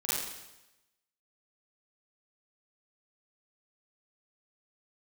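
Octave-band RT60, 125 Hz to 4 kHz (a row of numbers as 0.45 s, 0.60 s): 1.0 s, 0.95 s, 0.95 s, 0.95 s, 0.95 s, 0.95 s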